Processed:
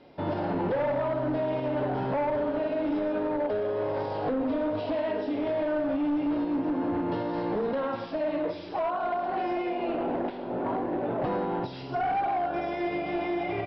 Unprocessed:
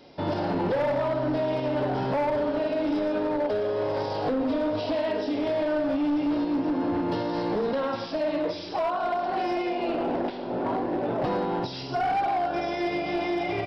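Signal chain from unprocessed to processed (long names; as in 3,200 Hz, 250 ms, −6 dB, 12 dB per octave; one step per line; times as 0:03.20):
low-pass filter 2,800 Hz 12 dB per octave
level −2 dB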